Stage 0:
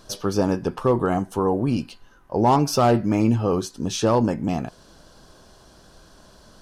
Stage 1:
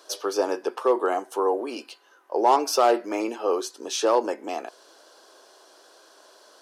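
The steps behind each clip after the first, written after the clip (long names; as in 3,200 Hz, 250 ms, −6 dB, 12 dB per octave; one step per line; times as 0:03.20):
Butterworth high-pass 350 Hz 36 dB per octave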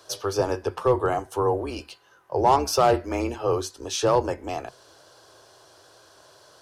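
sub-octave generator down 2 octaves, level −2 dB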